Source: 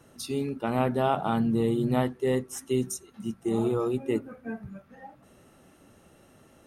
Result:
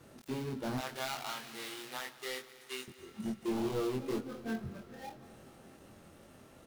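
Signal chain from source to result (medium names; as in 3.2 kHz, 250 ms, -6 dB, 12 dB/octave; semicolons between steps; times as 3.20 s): dead-time distortion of 0.15 ms; 0.78–2.88 s: high-pass 1.3 kHz 12 dB/octave; compression 1.5:1, threshold -35 dBFS, peak gain reduction 5 dB; overload inside the chain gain 31.5 dB; doubling 23 ms -3 dB; multi-head delay 86 ms, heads second and third, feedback 74%, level -20.5 dB; trim -1.5 dB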